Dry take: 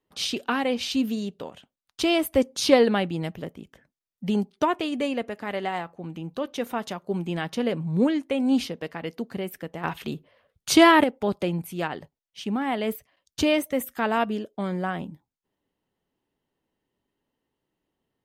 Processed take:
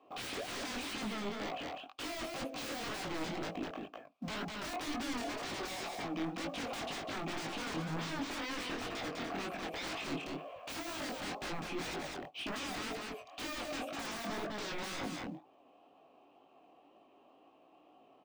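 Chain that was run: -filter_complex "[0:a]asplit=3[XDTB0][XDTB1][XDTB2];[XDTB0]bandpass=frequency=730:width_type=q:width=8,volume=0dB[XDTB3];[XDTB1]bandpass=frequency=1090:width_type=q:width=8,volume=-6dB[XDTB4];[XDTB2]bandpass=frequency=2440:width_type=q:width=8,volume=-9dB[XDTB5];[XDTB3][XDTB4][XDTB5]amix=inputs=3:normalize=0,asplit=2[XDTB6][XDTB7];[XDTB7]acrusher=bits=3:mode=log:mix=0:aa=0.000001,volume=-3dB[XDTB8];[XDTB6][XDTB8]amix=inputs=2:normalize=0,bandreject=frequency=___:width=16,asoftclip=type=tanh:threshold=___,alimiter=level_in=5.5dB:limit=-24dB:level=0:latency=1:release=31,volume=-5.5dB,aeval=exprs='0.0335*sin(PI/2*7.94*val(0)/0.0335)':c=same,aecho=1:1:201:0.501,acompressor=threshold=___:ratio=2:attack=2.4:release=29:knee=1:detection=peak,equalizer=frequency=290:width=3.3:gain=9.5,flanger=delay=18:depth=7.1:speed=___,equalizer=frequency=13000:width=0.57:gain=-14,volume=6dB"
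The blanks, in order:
1500, -25dB, -50dB, 2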